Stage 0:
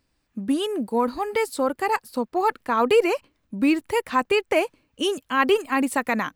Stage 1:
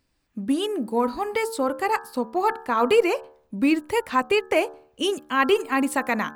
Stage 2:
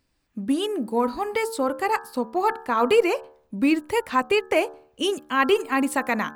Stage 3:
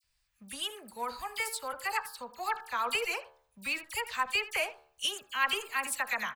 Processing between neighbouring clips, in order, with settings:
de-hum 75.1 Hz, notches 23
no audible change
amplifier tone stack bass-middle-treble 10-0-10; phase dispersion lows, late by 42 ms, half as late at 2.3 kHz; speakerphone echo 80 ms, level -15 dB

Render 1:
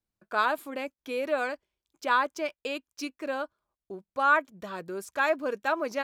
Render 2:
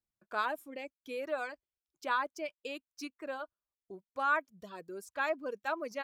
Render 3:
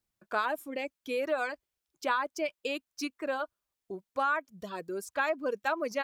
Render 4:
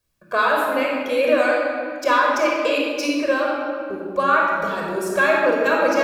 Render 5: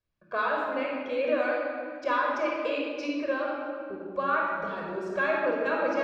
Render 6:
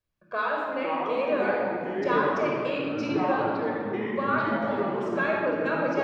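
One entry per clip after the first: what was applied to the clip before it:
reverb removal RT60 1.3 s; trim -7 dB
compression 5:1, threshold -33 dBFS, peak gain reduction 9 dB; trim +7.5 dB
simulated room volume 3800 m³, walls mixed, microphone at 5.5 m; trim +6.5 dB
distance through air 180 m; trim -8.5 dB
ever faster or slower copies 396 ms, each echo -5 st, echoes 3

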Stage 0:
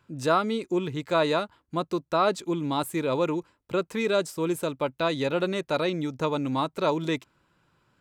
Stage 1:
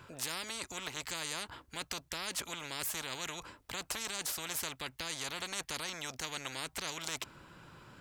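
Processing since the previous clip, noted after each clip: spectrum-flattening compressor 10:1; trim -6.5 dB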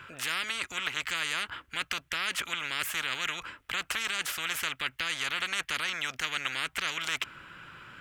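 high-order bell 2 kHz +11.5 dB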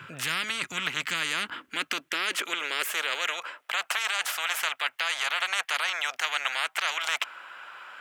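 high-pass sweep 140 Hz -> 720 Hz, 0.51–3.85 s; trim +2.5 dB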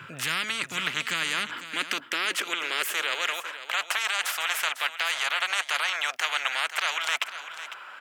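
delay 501 ms -12.5 dB; trim +1 dB

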